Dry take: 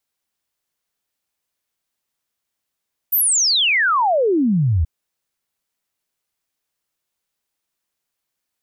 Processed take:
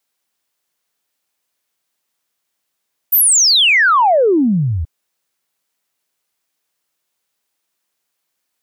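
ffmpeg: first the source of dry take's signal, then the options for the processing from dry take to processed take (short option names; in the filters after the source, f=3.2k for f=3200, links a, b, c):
-f lavfi -i "aevalsrc='0.211*clip(min(t,1.73-t)/0.01,0,1)*sin(2*PI*15000*1.73/log(73/15000)*(exp(log(73/15000)*t/1.73)-1))':d=1.73:s=44100"
-af "highpass=f=200:p=1,acontrast=51"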